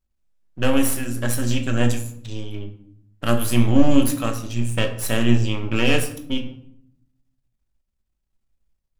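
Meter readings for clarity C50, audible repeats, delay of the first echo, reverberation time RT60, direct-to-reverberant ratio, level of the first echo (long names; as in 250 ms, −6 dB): 10.5 dB, no echo audible, no echo audible, 0.65 s, 4.0 dB, no echo audible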